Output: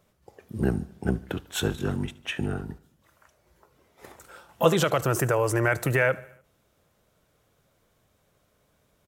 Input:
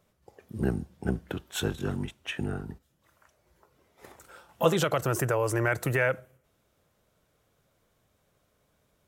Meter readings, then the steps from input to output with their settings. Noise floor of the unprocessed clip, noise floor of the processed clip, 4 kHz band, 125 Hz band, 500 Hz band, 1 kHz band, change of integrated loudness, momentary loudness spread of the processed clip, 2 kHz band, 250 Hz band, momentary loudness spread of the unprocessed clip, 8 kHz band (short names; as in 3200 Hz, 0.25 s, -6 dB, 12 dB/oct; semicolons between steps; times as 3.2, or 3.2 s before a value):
-72 dBFS, -69 dBFS, +3.0 dB, +3.0 dB, +3.0 dB, +3.0 dB, +3.0 dB, 9 LU, +3.0 dB, +3.0 dB, 9 LU, +3.0 dB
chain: feedback echo 74 ms, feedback 58%, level -22 dB; gain +3 dB